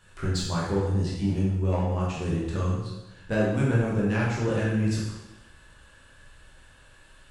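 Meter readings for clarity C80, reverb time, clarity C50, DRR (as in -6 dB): 3.5 dB, 1.0 s, 0.5 dB, -5.5 dB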